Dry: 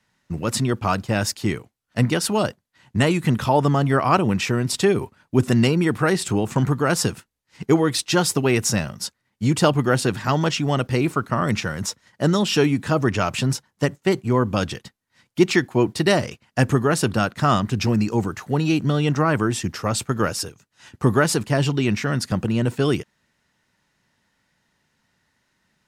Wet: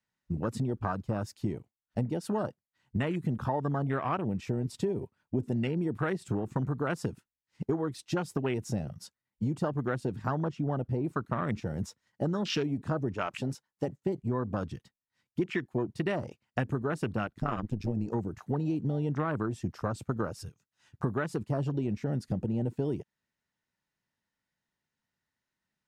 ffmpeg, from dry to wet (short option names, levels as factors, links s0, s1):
-filter_complex "[0:a]asettb=1/sr,asplit=3[s0][s1][s2];[s0]atrim=end=10.354[s3];[s1]atrim=start=10.35:end=11.05,asetpts=PTS-STARTPTS,afade=t=in:d=0.004:c=qsin,afade=t=out:st=0.696:d=0.004:c=qsin,highshelf=f=2100:g=-9[s4];[s2]atrim=start=11.046[s5];[s3][s4]acrossfade=d=0.004:c1=hsin:c2=qsin[s6];[s6][s5]acrossfade=d=0.004:c1=qsin:c2=hsin,asettb=1/sr,asplit=3[s7][s8][s9];[s7]atrim=end=13.144[s10];[s8]atrim=start=13.14:end=13.88,asetpts=PTS-STARTPTS,afade=t=in:d=0.004:c=qsin,afade=t=out:st=0.736:d=0.004:c=qsin,equalizer=f=100:w=0.49:g=-10[s11];[s9]atrim=start=13.876[s12];[s10][s11]acrossfade=d=0.004:c1=hsin:c2=qsin[s13];[s13][s12]acrossfade=d=0.004:c1=qsin:c2=hsin,asettb=1/sr,asplit=3[s14][s15][s16];[s14]atrim=end=17.274[s17];[s15]atrim=start=17.27:end=18.08,asetpts=PTS-STARTPTS,afade=t=in:d=0.004:c=qsin,afade=t=out:st=0.806:d=0.004:c=qsin,tremolo=f=110:d=0.824[s18];[s16]atrim=start=18.076[s19];[s17][s18]acrossfade=d=0.004:c1=hsin:c2=qsin[s20];[s20][s19]acrossfade=d=0.004:c1=qsin:c2=hsin,afwtdn=0.0562,acompressor=threshold=0.0562:ratio=6,volume=0.75"